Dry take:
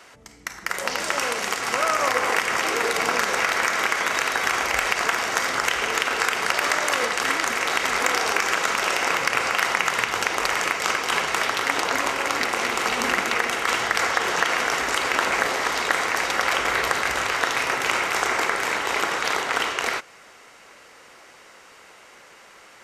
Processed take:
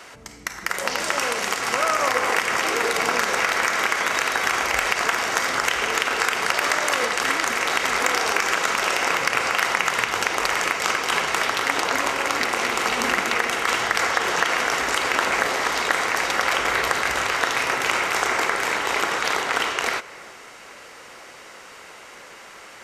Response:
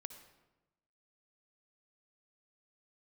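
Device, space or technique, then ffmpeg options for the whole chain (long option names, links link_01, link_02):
compressed reverb return: -filter_complex "[0:a]asplit=2[link_01][link_02];[1:a]atrim=start_sample=2205[link_03];[link_02][link_03]afir=irnorm=-1:irlink=0,acompressor=threshold=-39dB:ratio=6,volume=6dB[link_04];[link_01][link_04]amix=inputs=2:normalize=0,volume=-1dB"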